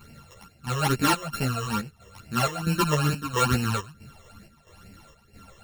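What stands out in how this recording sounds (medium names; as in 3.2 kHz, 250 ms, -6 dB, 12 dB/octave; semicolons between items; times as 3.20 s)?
a buzz of ramps at a fixed pitch in blocks of 32 samples; phasing stages 12, 2.3 Hz, lowest notch 240–1200 Hz; chopped level 1.5 Hz, depth 65%, duty 70%; a shimmering, thickened sound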